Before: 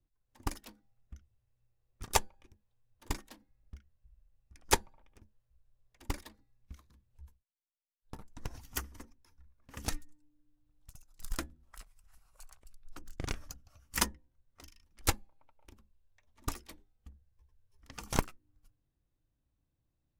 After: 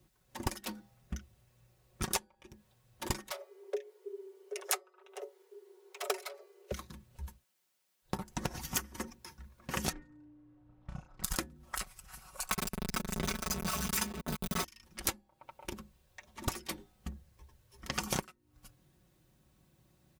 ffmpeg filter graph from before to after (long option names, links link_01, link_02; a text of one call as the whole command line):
ffmpeg -i in.wav -filter_complex "[0:a]asettb=1/sr,asplit=3[link_01][link_02][link_03];[link_01]atrim=end=3.304[link_04];[link_02]atrim=start=3.3:end=6.72,asetpts=PTS-STARTPTS,afade=type=in:duration=0.004:curve=qsin,afade=type=out:start_time=3.416:duration=0.004:curve=qsin,highpass=44,afreqshift=350[link_05];[link_03]atrim=start=6.716[link_06];[link_04][link_05]acrossfade=duration=0.004:curve1=hsin:curve2=qsin[link_07];[link_07][link_06]acrossfade=duration=0.004:curve1=qsin:curve2=hsin,asettb=1/sr,asplit=3[link_08][link_09][link_10];[link_08]atrim=end=9.924[link_11];[link_09]atrim=start=9.92:end=11.24,asetpts=PTS-STARTPTS,afade=type=in:duration=0.004:curve=qsin,afade=type=out:start_time=1.316:duration=0.004:curve=qsin,lowpass=1400,asplit=2[link_12][link_13];[link_13]adelay=33,volume=-3.5dB[link_14];[link_12][link_14]amix=inputs=2:normalize=0,atrim=end_sample=58212[link_15];[link_10]atrim=start=11.236[link_16];[link_11][link_15]acrossfade=duration=0.004:curve1=hsin:curve2=qsin[link_17];[link_17][link_16]acrossfade=duration=0.004:curve1=qsin:curve2=hsin,asettb=1/sr,asplit=3[link_18][link_19][link_20];[link_18]atrim=end=12.514[link_21];[link_19]atrim=start=12.51:end=14.64,asetpts=PTS-STARTPTS,afade=type=in:duration=0.004:curve=qsin,afade=type=out:start_time=2.126:duration=0.004:curve=qsin,aeval=exprs='val(0)+0.5*0.0335*sgn(val(0))':channel_layout=same,aecho=1:1:4.6:0.78,atrim=end_sample=93933[link_22];[link_20]atrim=start=14.636[link_23];[link_21][link_22]acrossfade=duration=0.004:curve1=hsin:curve2=qsin[link_24];[link_24][link_23]acrossfade=duration=0.004:curve1=qsin:curve2=hsin,highpass=78,aecho=1:1:5.4:0.6,acompressor=threshold=-48dB:ratio=20,volume=17dB" out.wav